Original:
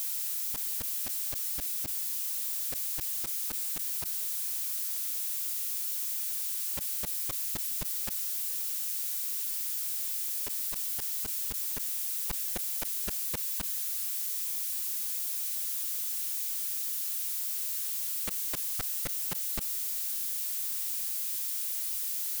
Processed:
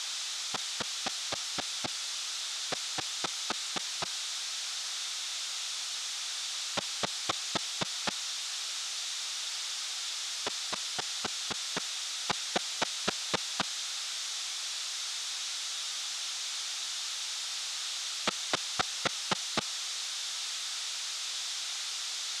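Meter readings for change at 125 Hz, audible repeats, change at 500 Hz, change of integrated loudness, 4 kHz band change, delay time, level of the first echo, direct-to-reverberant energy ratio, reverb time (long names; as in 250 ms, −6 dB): +0.5 dB, no echo audible, +10.0 dB, −3.0 dB, +11.5 dB, no echo audible, no echo audible, no reverb audible, no reverb audible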